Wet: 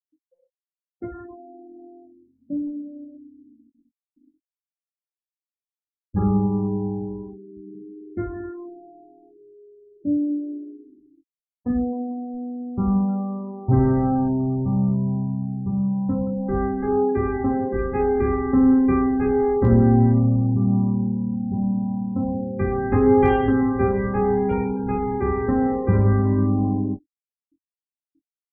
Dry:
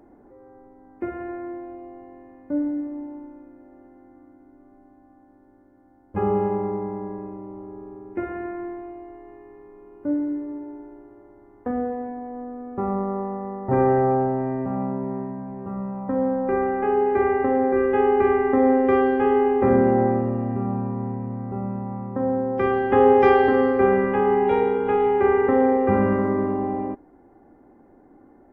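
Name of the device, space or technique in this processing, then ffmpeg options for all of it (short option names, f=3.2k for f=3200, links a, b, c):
double-tracked vocal: -filter_complex "[0:a]afftfilt=real='re*gte(hypot(re,im),0.0398)':imag='im*gte(hypot(re,im),0.0398)':win_size=1024:overlap=0.75,asubboost=boost=8:cutoff=180,asplit=2[a][b];[b]adelay=22,volume=-12.5dB[c];[a][c]amix=inputs=2:normalize=0,flanger=delay=16:depth=5.7:speed=0.16"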